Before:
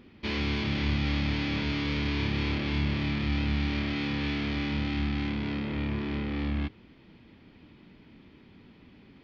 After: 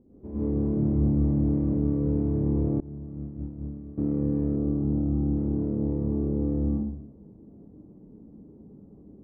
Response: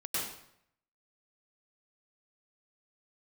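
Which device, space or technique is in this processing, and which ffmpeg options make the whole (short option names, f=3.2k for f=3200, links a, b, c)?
next room: -filter_complex "[0:a]lowpass=f=640:w=0.5412,lowpass=f=640:w=1.3066[a];[1:a]atrim=start_sample=2205[b];[a][b]afir=irnorm=-1:irlink=0,asettb=1/sr,asplit=3[c][d][e];[c]atrim=end=2.804[f];[d]atrim=start=2.8:end=3.98,asetpts=PTS-STARTPTS,afade=t=in:d=0.004:c=qsin,afade=t=out:st=1.176:d=0.004:c=qsin,agate=range=-33dB:threshold=-13dB:ratio=3:detection=peak[g];[e]atrim=start=3.976[h];[f][g]acrossfade=d=0.004:c1=hsin:c2=qsin[i];[i][h]acrossfade=d=0.004:c1=qsin:c2=hsin,asettb=1/sr,asplit=3[j][k][l];[j]atrim=end=4.564[m];[k]atrim=start=4.56:end=5.37,asetpts=PTS-STARTPTS,afade=t=in:d=0.004:c=qsin,afade=t=out:st=0.806:d=0.004:c=qsin,lowpass=f=1.4k:w=0.5412,lowpass=f=1.4k:w=1.3066[n];[l]atrim=start=5.366[o];[m][n]acrossfade=d=0.004:c1=hsin:c2=qsin[p];[p][o]acrossfade=d=0.004:c1=qsin:c2=hsin"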